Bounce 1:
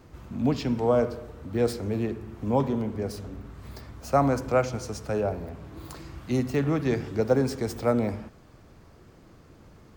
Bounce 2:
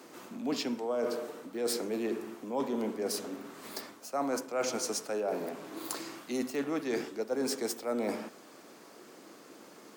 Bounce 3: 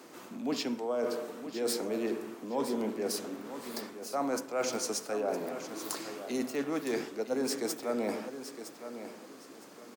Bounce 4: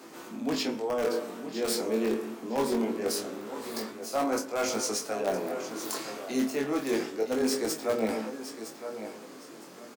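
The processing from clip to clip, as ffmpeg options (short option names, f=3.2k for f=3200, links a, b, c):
-af "highpass=f=250:w=0.5412,highpass=f=250:w=1.3066,equalizer=f=11k:t=o:w=2:g=8.5,areverse,acompressor=threshold=-33dB:ratio=8,areverse,volume=3.5dB"
-af "aecho=1:1:962|1924|2886:0.282|0.0733|0.0191"
-filter_complex "[0:a]asplit=2[a][b];[b]aeval=exprs='(mod(15*val(0)+1,2)-1)/15':c=same,volume=-6.5dB[c];[a][c]amix=inputs=2:normalize=0,flanger=delay=18:depth=4.6:speed=0.24,asplit=2[d][e];[e]adelay=27,volume=-8.5dB[f];[d][f]amix=inputs=2:normalize=0,volume=3dB"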